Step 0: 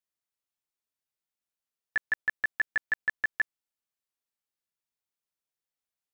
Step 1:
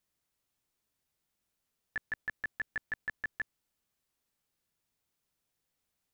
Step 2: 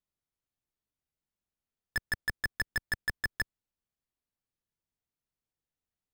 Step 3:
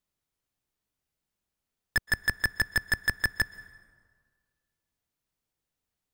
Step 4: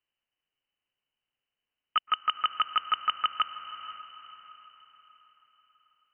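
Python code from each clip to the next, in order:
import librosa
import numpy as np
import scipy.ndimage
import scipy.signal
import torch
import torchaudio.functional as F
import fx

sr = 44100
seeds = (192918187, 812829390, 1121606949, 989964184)

y1 = fx.low_shelf(x, sr, hz=310.0, db=9.5)
y1 = fx.over_compress(y1, sr, threshold_db=-30.0, ratio=-0.5)
y1 = F.gain(torch.from_numpy(y1), -1.0).numpy()
y2 = fx.tilt_eq(y1, sr, slope=-1.5)
y2 = fx.leveller(y2, sr, passes=5)
y3 = fx.rev_plate(y2, sr, seeds[0], rt60_s=1.7, hf_ratio=0.6, predelay_ms=110, drr_db=18.5)
y3 = F.gain(torch.from_numpy(y3), 6.0).numpy()
y4 = fx.echo_diffused(y3, sr, ms=487, feedback_pct=44, wet_db=-12)
y4 = fx.freq_invert(y4, sr, carrier_hz=3000)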